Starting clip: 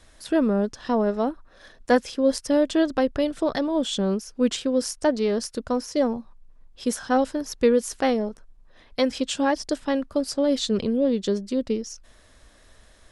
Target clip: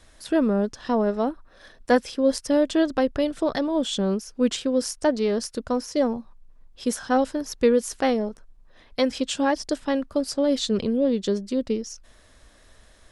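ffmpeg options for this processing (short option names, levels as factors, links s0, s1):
-filter_complex "[0:a]asettb=1/sr,asplit=3[s0][s1][s2];[s0]atrim=end=0.984[s3];[s1]atrim=start=0.98:end=2.2,asetpts=PTS-STARTPTS,afade=t=in:d=0.004:c=qsin,afade=t=out:st=1.216:d=0.004:c=qsin,bandreject=f=6700:w=13[s4];[s2]atrim=start=2.196[s5];[s3][s4]acrossfade=d=0.004:c1=hsin:c2=qsin[s6];[s6][s5]acrossfade=d=0.004:c1=qsin:c2=hsin"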